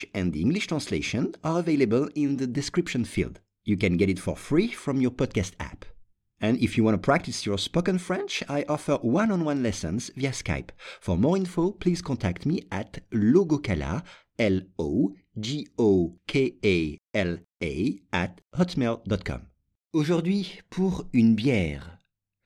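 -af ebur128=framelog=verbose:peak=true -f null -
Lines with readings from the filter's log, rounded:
Integrated loudness:
  I:         -26.4 LUFS
  Threshold: -36.7 LUFS
Loudness range:
  LRA:         2.2 LU
  Threshold: -46.8 LUFS
  LRA low:   -28.0 LUFS
  LRA high:  -25.8 LUFS
True peak:
  Peak:       -8.2 dBFS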